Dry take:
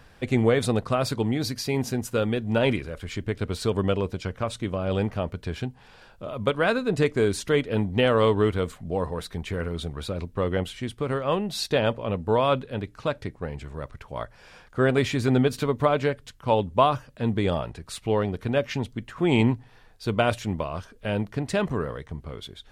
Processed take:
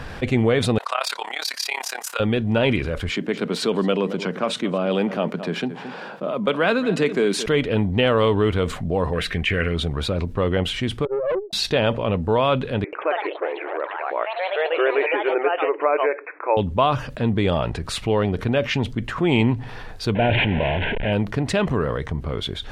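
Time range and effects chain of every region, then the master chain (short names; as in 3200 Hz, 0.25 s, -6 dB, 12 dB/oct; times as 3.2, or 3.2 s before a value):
0.78–2.2 HPF 770 Hz 24 dB/oct + high shelf 8000 Hz +7 dB + AM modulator 34 Hz, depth 80%
3.11–7.46 steep high-pass 160 Hz 48 dB/oct + echo 0.221 s -19 dB + mismatched tape noise reduction decoder only
9.13–9.74 Butterworth band-stop 900 Hz, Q 3.7 + band shelf 2200 Hz +10 dB 1.1 oct
11.05–11.53 spectral contrast raised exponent 3 + brick-wall FIR band-pass 330–1800 Hz + tube stage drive 24 dB, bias 0.3
12.84–16.57 brick-wall FIR band-pass 300–2600 Hz + echoes that change speed 88 ms, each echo +3 st, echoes 3, each echo -6 dB
20.15–21.13 delta modulation 16 kbps, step -26.5 dBFS + Butterworth band-stop 1200 Hz, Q 2.1 + sustainer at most 28 dB/s
whole clip: LPF 3700 Hz 6 dB/oct; dynamic EQ 2900 Hz, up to +5 dB, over -46 dBFS, Q 1.6; fast leveller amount 50%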